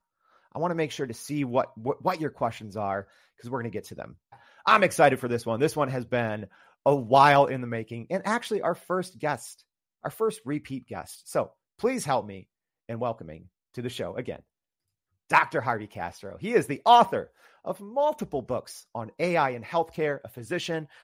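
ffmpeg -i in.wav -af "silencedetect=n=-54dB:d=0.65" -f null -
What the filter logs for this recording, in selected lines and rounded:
silence_start: 14.40
silence_end: 15.30 | silence_duration: 0.89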